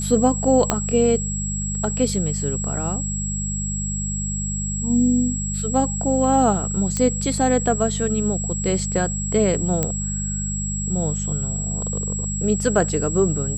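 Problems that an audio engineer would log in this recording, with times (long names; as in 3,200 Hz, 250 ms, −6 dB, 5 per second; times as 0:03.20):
mains hum 50 Hz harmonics 4 −27 dBFS
whistle 7,700 Hz −27 dBFS
0:00.70: click −3 dBFS
0:06.97: click −9 dBFS
0:09.83: click −6 dBFS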